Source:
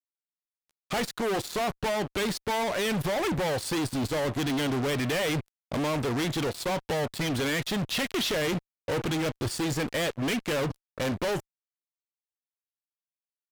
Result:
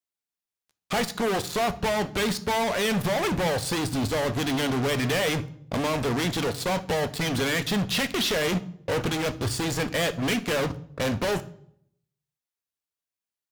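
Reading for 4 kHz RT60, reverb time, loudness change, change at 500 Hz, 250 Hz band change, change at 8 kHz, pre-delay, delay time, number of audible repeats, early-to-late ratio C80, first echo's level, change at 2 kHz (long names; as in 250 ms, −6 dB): 0.50 s, 0.70 s, +3.0 dB, +2.5 dB, +2.0 dB, +3.5 dB, 3 ms, no echo audible, no echo audible, 21.0 dB, no echo audible, +3.5 dB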